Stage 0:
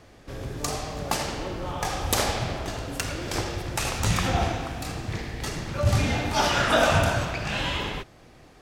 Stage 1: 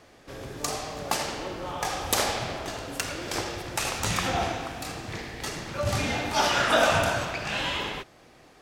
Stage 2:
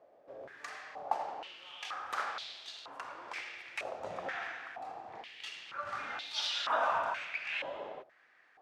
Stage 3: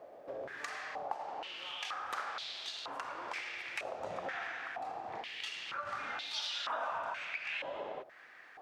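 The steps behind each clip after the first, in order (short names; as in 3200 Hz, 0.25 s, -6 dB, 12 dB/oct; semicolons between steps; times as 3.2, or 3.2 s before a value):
low shelf 170 Hz -11 dB
stepped band-pass 2.1 Hz 610–3800 Hz
compressor 3:1, threshold -50 dBFS, peak gain reduction 18 dB; gain +9.5 dB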